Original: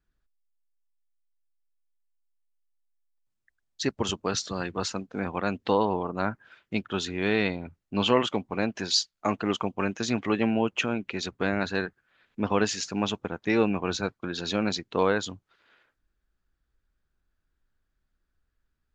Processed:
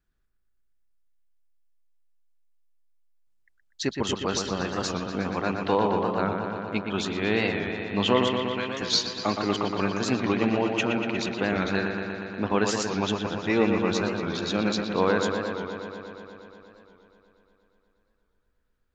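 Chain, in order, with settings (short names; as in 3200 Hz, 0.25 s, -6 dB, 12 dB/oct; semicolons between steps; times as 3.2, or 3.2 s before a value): 8.29–8.82 elliptic high-pass 1300 Hz; dark delay 0.119 s, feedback 79%, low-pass 3500 Hz, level -5.5 dB; record warp 45 rpm, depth 100 cents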